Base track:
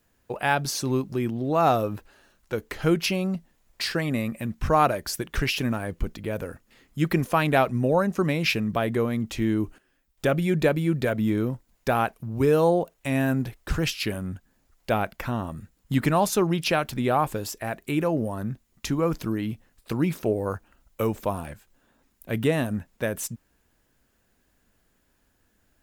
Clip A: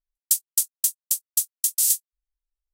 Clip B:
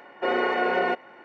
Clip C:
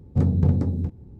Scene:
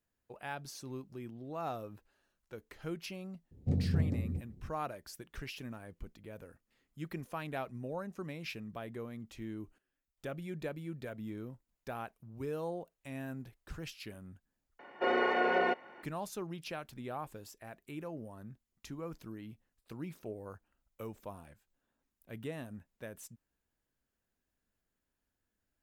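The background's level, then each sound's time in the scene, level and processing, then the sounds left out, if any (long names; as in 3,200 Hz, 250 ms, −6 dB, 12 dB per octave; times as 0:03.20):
base track −18.5 dB
0:03.51: mix in C −11 dB + flat-topped bell 1,200 Hz −10.5 dB 1.1 octaves
0:14.79: overwrite with B −5.5 dB
not used: A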